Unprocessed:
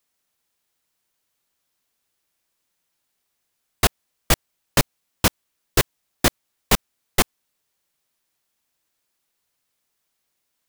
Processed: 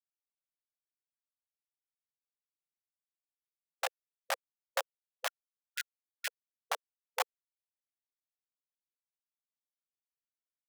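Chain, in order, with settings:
high-shelf EQ 8,200 Hz −12 dB
comparator with hysteresis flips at −16 dBFS
linear-phase brick-wall high-pass 500 Hz, from 0:05.26 1,400 Hz, from 0:06.27 470 Hz
level +5 dB

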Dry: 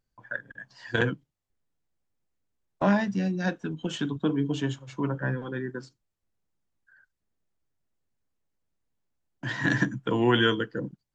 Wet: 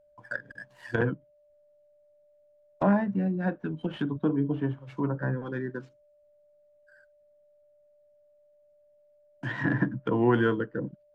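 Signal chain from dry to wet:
running median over 9 samples
steady tone 590 Hz −60 dBFS
treble cut that deepens with the level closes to 1,400 Hz, closed at −26 dBFS

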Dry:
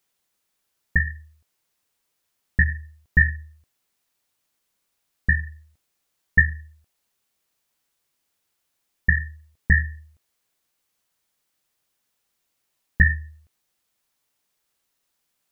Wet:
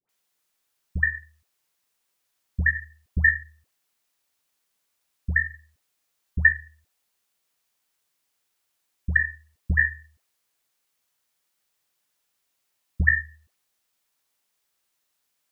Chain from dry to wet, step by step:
low-shelf EQ 420 Hz −5.5 dB
all-pass dispersion highs, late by 92 ms, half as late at 990 Hz

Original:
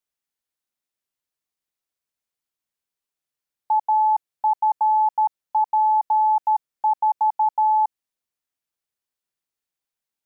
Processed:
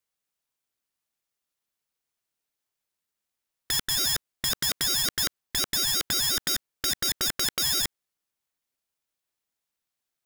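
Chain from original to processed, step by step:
wrap-around overflow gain 21 dB
ring modulator whose carrier an LFO sweeps 750 Hz, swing 35%, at 5.6 Hz
level +5 dB

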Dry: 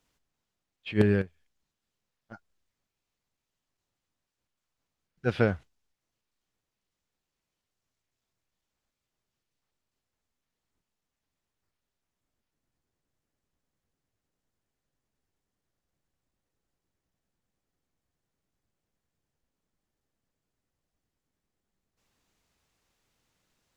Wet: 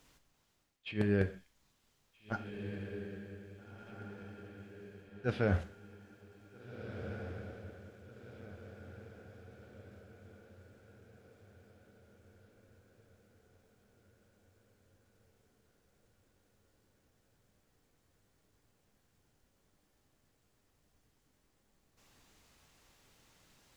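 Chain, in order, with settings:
reversed playback
downward compressor 6 to 1, threshold −38 dBFS, peak gain reduction 20.5 dB
reversed playback
feedback delay with all-pass diffusion 1,730 ms, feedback 50%, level −8.5 dB
reverb whose tail is shaped and stops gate 180 ms falling, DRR 9 dB
level +9 dB

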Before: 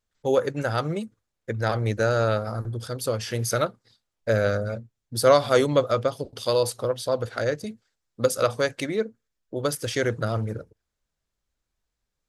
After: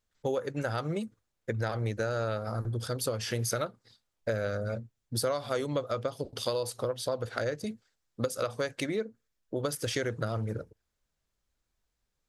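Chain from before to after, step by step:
downward compressor 6 to 1, threshold −28 dBFS, peak gain reduction 15.5 dB

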